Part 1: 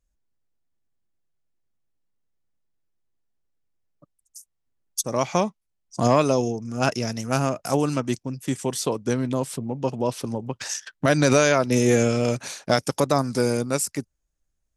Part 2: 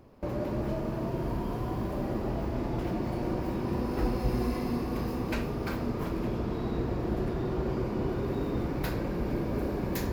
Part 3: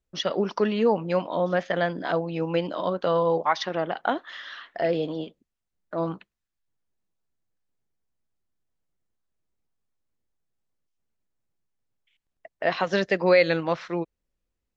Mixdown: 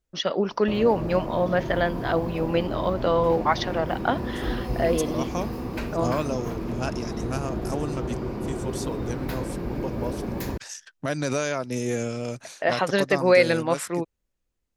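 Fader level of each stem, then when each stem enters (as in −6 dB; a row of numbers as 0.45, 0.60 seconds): −8.5, +0.5, +1.0 decibels; 0.00, 0.45, 0.00 seconds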